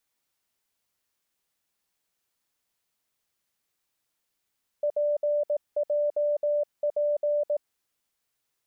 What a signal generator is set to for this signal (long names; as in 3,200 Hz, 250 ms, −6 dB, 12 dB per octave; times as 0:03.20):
Morse code "PJP" 18 words per minute 589 Hz −22 dBFS